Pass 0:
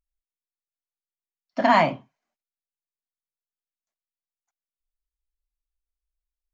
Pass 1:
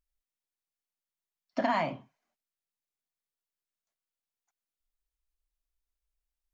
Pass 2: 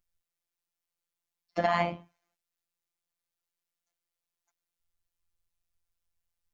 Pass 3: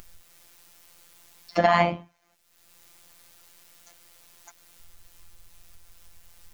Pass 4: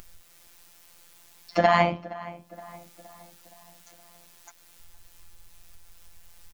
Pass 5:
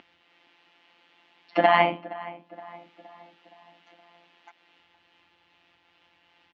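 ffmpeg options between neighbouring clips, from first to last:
ffmpeg -i in.wav -af "acompressor=threshold=-27dB:ratio=4" out.wav
ffmpeg -i in.wav -af "afftfilt=real='hypot(re,im)*cos(PI*b)':imag='0':win_size=1024:overlap=0.75,tremolo=f=84:d=0.261,volume=7dB" out.wav
ffmpeg -i in.wav -af "acompressor=mode=upward:threshold=-35dB:ratio=2.5,volume=7dB" out.wav
ffmpeg -i in.wav -filter_complex "[0:a]asplit=2[link_01][link_02];[link_02]adelay=469,lowpass=frequency=2200:poles=1,volume=-17.5dB,asplit=2[link_03][link_04];[link_04]adelay=469,lowpass=frequency=2200:poles=1,volume=0.53,asplit=2[link_05][link_06];[link_06]adelay=469,lowpass=frequency=2200:poles=1,volume=0.53,asplit=2[link_07][link_08];[link_08]adelay=469,lowpass=frequency=2200:poles=1,volume=0.53,asplit=2[link_09][link_10];[link_10]adelay=469,lowpass=frequency=2200:poles=1,volume=0.53[link_11];[link_01][link_03][link_05][link_07][link_09][link_11]amix=inputs=6:normalize=0" out.wav
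ffmpeg -i in.wav -af "highpass=230,equalizer=frequency=290:width_type=q:width=4:gain=10,equalizer=frequency=830:width_type=q:width=4:gain=6,equalizer=frequency=2000:width_type=q:width=4:gain=4,equalizer=frequency=2900:width_type=q:width=4:gain=7,lowpass=frequency=3500:width=0.5412,lowpass=frequency=3500:width=1.3066,volume=-1.5dB" out.wav

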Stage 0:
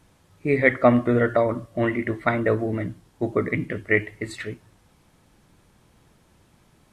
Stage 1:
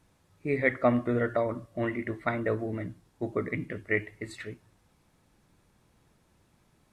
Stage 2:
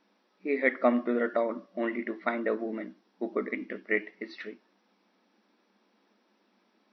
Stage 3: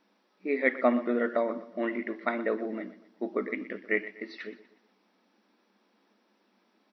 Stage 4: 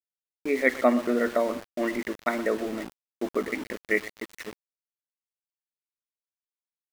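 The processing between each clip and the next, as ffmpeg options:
ffmpeg -i in.wav -af "bandreject=frequency=3100:width=21,volume=-7.5dB" out.wav
ffmpeg -i in.wav -af "afftfilt=real='re*between(b*sr/4096,190,5900)':imag='im*between(b*sr/4096,190,5900)':win_size=4096:overlap=0.75" out.wav
ffmpeg -i in.wav -af "aecho=1:1:122|244|366|488:0.158|0.0634|0.0254|0.0101" out.wav
ffmpeg -i in.wav -af "aeval=exprs='val(0)*gte(abs(val(0)),0.0119)':channel_layout=same,volume=3dB" out.wav

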